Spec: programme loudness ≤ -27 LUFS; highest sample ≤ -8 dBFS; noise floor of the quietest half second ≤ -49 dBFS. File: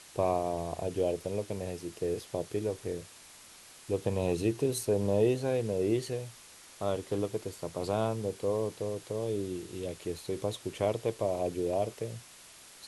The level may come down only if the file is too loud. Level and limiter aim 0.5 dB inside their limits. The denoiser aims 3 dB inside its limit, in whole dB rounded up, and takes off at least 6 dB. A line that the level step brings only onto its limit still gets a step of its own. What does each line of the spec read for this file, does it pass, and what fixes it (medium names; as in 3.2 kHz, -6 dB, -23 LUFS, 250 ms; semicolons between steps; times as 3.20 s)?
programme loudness -33.0 LUFS: pass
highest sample -15.0 dBFS: pass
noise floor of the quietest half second -53 dBFS: pass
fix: none needed